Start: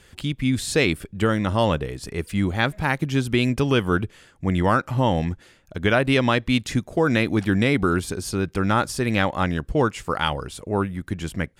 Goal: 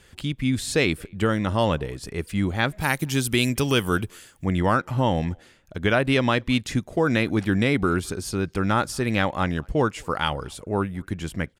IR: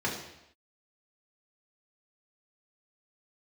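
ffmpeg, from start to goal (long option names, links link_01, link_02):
-filter_complex "[0:a]asplit=3[link_01][link_02][link_03];[link_01]afade=type=out:start_time=2.79:duration=0.02[link_04];[link_02]aemphasis=mode=production:type=75fm,afade=type=in:start_time=2.79:duration=0.02,afade=type=out:start_time=4.44:duration=0.02[link_05];[link_03]afade=type=in:start_time=4.44:duration=0.02[link_06];[link_04][link_05][link_06]amix=inputs=3:normalize=0,asplit=2[link_07][link_08];[link_08]adelay=220,highpass=300,lowpass=3400,asoftclip=type=hard:threshold=-12.5dB,volume=-29dB[link_09];[link_07][link_09]amix=inputs=2:normalize=0,volume=-1.5dB"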